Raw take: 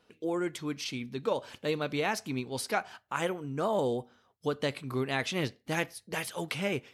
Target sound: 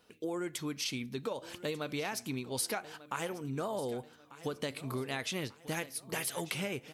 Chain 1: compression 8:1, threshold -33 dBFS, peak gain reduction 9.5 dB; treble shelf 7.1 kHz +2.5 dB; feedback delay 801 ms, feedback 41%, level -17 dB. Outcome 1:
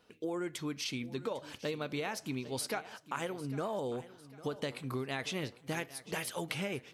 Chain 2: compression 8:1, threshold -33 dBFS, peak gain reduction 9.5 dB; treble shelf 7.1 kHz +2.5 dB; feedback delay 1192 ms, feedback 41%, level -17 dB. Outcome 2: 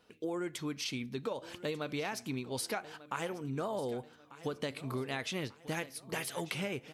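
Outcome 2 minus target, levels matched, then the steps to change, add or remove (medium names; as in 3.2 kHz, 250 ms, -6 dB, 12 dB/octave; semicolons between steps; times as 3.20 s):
8 kHz band -3.5 dB
change: treble shelf 7.1 kHz +10.5 dB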